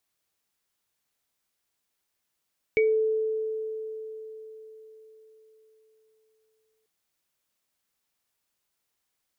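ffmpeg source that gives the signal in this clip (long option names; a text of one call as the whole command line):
ffmpeg -f lavfi -i "aevalsrc='0.126*pow(10,-3*t/4.46)*sin(2*PI*438*t)+0.0891*pow(10,-3*t/0.23)*sin(2*PI*2260*t)':duration=4.09:sample_rate=44100" out.wav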